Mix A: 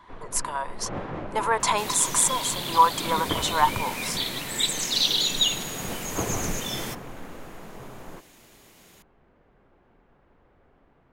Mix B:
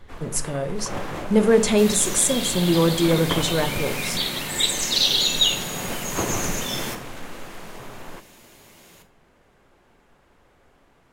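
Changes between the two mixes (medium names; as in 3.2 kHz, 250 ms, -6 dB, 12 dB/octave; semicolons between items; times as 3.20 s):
speech: remove resonant high-pass 980 Hz, resonance Q 12; first sound: remove tape spacing loss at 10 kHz 33 dB; reverb: on, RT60 0.35 s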